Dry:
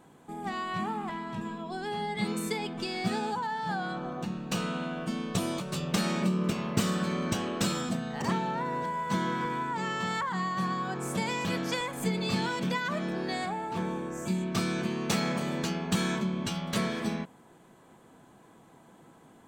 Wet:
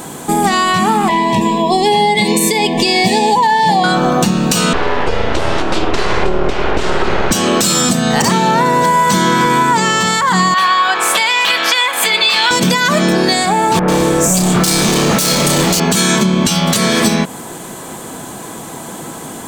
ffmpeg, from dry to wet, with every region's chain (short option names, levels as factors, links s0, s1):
-filter_complex "[0:a]asettb=1/sr,asplit=3[s0][s1][s2];[s0]atrim=end=1.084[s3];[s1]atrim=start=1.08:end=3.84,asetpts=PTS-STARTPTS,afade=t=in:d=0.004:c=qsin,afade=t=out:st=2.756:d=0.004:c=qsin,asuperstop=centerf=1400:order=20:qfactor=2.4,bass=f=250:g=-5,treble=f=4000:g=-8[s4];[s2]atrim=start=3.836[s5];[s3][s4]acrossfade=d=0.004:c1=hsin:c2=qsin[s6];[s6][s5]acrossfade=d=0.004:c1=qsin:c2=hsin,asettb=1/sr,asplit=3[s7][s8][s9];[s7]atrim=end=4.734[s10];[s8]atrim=start=4.73:end=7.31,asetpts=PTS-STARTPTS,afade=t=in:d=0.004:c=qsin,afade=t=out:st=2.576:d=0.004:c=qsin,aeval=exprs='abs(val(0))':c=same,lowpass=2300[s11];[s9]atrim=start=7.306[s12];[s10][s11]acrossfade=d=0.004:c1=hsin:c2=qsin[s13];[s13][s12]acrossfade=d=0.004:c1=qsin:c2=hsin,asettb=1/sr,asplit=3[s14][s15][s16];[s14]atrim=end=10.544[s17];[s15]atrim=start=10.54:end=12.51,asetpts=PTS-STARTPTS,afade=t=in:d=0.004:c=qsin,afade=t=out:st=1.966:d=0.004:c=qsin,highpass=890,highshelf=f=4600:t=q:w=1.5:g=-11[s18];[s16]atrim=start=12.506[s19];[s17][s18]acrossfade=d=0.004:c1=hsin:c2=qsin[s20];[s20][s19]acrossfade=d=0.004:c1=qsin:c2=hsin,asettb=1/sr,asplit=3[s21][s22][s23];[s21]atrim=end=13.794[s24];[s22]atrim=start=13.79:end=15.8,asetpts=PTS-STARTPTS,afade=t=in:d=0.004:c=qsin,afade=t=out:st=2.006:d=0.004:c=qsin,asoftclip=type=hard:threshold=0.02,asplit=2[s25][s26];[s26]adelay=34,volume=0.447[s27];[s25][s27]amix=inputs=2:normalize=0,atrim=end_sample=88641,acrossover=split=2000[s28][s29];[s29]adelay=90[s30];[s28][s30]amix=inputs=2:normalize=0,atrim=end_sample=88641[s31];[s23]atrim=start=15.796[s32];[s24][s31]acrossfade=d=0.004:c1=hsin:c2=qsin[s33];[s33][s32]acrossfade=d=0.004:c1=qsin:c2=hsin,bass=f=250:g=-2,treble=f=4000:g=12,acompressor=threshold=0.0158:ratio=6,alimiter=level_in=26.6:limit=0.891:release=50:level=0:latency=1,volume=0.891"